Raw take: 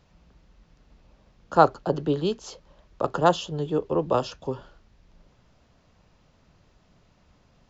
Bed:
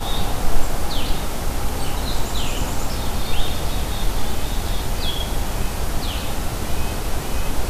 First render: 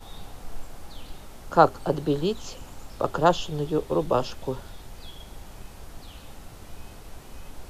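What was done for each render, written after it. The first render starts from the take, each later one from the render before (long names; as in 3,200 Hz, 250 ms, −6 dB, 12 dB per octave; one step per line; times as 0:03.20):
mix in bed −19.5 dB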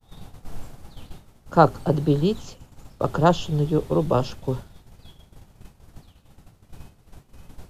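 downward expander −31 dBFS
parametric band 130 Hz +9.5 dB 2 octaves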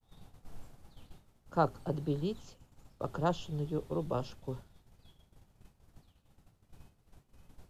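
level −13.5 dB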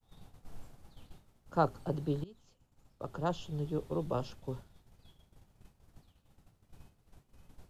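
0:02.24–0:03.69: fade in, from −20.5 dB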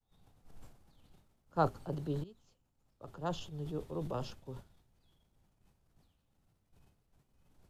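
transient designer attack −2 dB, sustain +8 dB
expander for the loud parts 1.5 to 1, over −48 dBFS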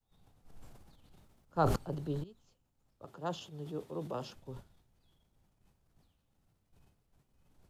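0:00.64–0:01.76: level that may fall only so fast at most 36 dB per second
0:03.05–0:04.35: high-pass filter 160 Hz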